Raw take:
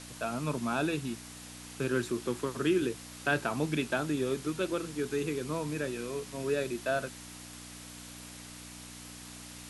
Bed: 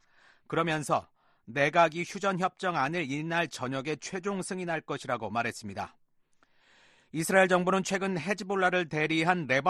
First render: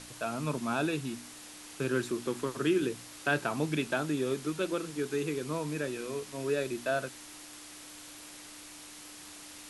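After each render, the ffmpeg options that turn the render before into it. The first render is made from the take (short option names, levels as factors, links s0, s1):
-af "bandreject=f=60:t=h:w=4,bandreject=f=120:t=h:w=4,bandreject=f=180:t=h:w=4,bandreject=f=240:t=h:w=4"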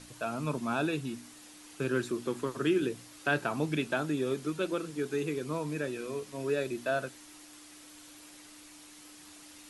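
-af "afftdn=nr=6:nf=-49"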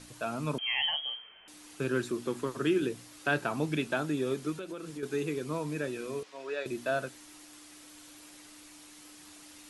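-filter_complex "[0:a]asettb=1/sr,asplit=3[s0][s1][s2];[s0]atrim=end=0.584[s3];[s1]atrim=start=0.58:end=1.48,asetpts=PTS-STARTPTS,afade=t=in:d=0.004:c=qsin,afade=t=out:st=0.896:d=0.004:c=qsin,lowpass=f=2900:t=q:w=0.5098,lowpass=f=2900:t=q:w=0.6013,lowpass=f=2900:t=q:w=0.9,lowpass=f=2900:t=q:w=2.563,afreqshift=-3400[s4];[s2]atrim=start=1.476[s5];[s3][s4]acrossfade=d=0.004:c1=hsin:c2=qsin[s6];[s6][s5]acrossfade=d=0.004:c1=qsin:c2=hsin,asettb=1/sr,asplit=3[s7][s8][s9];[s7]atrim=end=4.584[s10];[s8]atrim=start=4.58:end=5.03,asetpts=PTS-STARTPTS,afade=t=in:d=0.004:c=qsin,afade=t=out:st=0.446:d=0.004:c=qsin,acompressor=threshold=0.0158:ratio=6:attack=3.2:release=140:knee=1:detection=peak[s11];[s9]atrim=start=5.026[s12];[s10][s11]acrossfade=d=0.004:c1=hsin:c2=qsin[s13];[s13][s12]acrossfade=d=0.004:c1=qsin:c2=hsin,asettb=1/sr,asplit=3[s14][s15][s16];[s14]atrim=end=6.234[s17];[s15]atrim=start=6.23:end=6.66,asetpts=PTS-STARTPTS,afade=t=in:d=0.004:c=qsin,afade=t=out:st=0.426:d=0.004:c=qsin,highpass=580,lowpass=4800[s18];[s16]atrim=start=6.656[s19];[s17][s18]acrossfade=d=0.004:c1=hsin:c2=qsin[s20];[s20][s19]acrossfade=d=0.004:c1=qsin:c2=hsin"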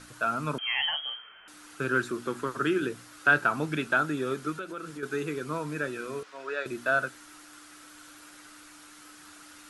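-af "equalizer=f=1400:t=o:w=0.57:g=13"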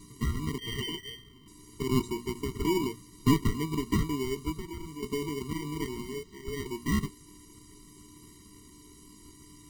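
-filter_complex "[0:a]acrossover=split=3500[s0][s1];[s0]acrusher=samples=34:mix=1:aa=0.000001[s2];[s2][s1]amix=inputs=2:normalize=0,afftfilt=real='re*eq(mod(floor(b*sr/1024/460),2),0)':imag='im*eq(mod(floor(b*sr/1024/460),2),0)':win_size=1024:overlap=0.75"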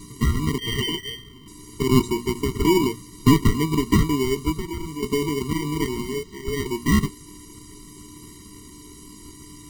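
-af "volume=2.99,alimiter=limit=0.708:level=0:latency=1"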